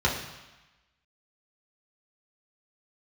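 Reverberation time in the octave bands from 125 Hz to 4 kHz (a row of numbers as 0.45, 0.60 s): 1.0, 1.0, 1.0, 1.2, 1.2, 1.1 s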